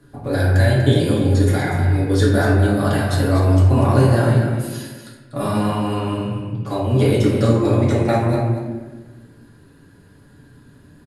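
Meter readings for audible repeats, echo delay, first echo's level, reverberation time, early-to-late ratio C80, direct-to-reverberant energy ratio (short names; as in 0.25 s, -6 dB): 1, 0.243 s, -8.5 dB, 1.3 s, 2.5 dB, -6.5 dB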